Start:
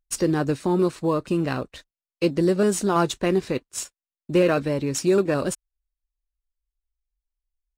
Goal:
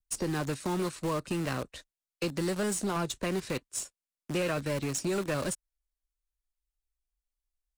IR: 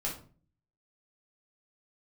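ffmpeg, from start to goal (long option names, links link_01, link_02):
-filter_complex "[0:a]adynamicequalizer=threshold=0.0224:dfrequency=570:dqfactor=2.7:tfrequency=570:tqfactor=2.7:attack=5:release=100:ratio=0.375:range=2:mode=boostabove:tftype=bell,asplit=2[link_01][link_02];[link_02]aeval=exprs='val(0)*gte(abs(val(0)),0.0596)':channel_layout=same,volume=-5dB[link_03];[link_01][link_03]amix=inputs=2:normalize=0,equalizer=frequency=8900:width_type=o:width=1.1:gain=5.5,acrossover=split=230|920[link_04][link_05][link_06];[link_04]acompressor=threshold=-27dB:ratio=4[link_07];[link_05]acompressor=threshold=-29dB:ratio=4[link_08];[link_06]acompressor=threshold=-26dB:ratio=4[link_09];[link_07][link_08][link_09]amix=inputs=3:normalize=0,asoftclip=type=tanh:threshold=-19dB,volume=-4.5dB"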